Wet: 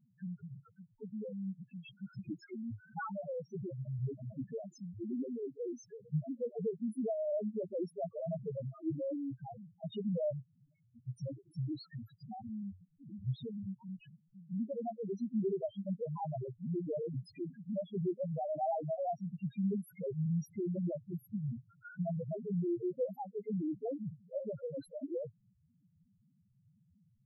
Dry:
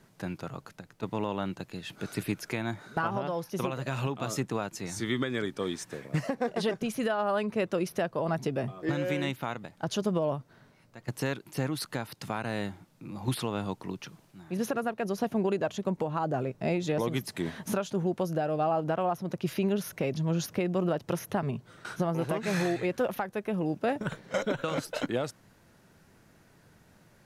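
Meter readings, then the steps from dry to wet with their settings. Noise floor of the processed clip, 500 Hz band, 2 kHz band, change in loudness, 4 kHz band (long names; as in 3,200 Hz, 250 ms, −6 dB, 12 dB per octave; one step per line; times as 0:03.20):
−72 dBFS, −7.5 dB, below −20 dB, −7.5 dB, −21.5 dB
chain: spectral peaks only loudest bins 1
level +1 dB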